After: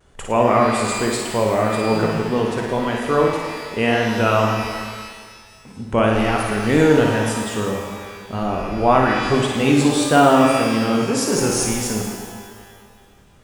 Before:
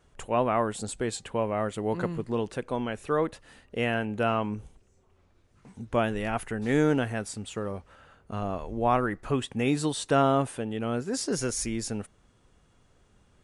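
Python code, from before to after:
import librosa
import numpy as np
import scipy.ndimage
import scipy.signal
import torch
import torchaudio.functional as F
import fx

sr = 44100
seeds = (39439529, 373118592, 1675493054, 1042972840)

y = fx.room_flutter(x, sr, wall_m=9.4, rt60_s=0.69)
y = fx.vibrato(y, sr, rate_hz=1.8, depth_cents=68.0)
y = fx.rev_shimmer(y, sr, seeds[0], rt60_s=1.8, semitones=12, shimmer_db=-8, drr_db=3.5)
y = y * librosa.db_to_amplitude(7.0)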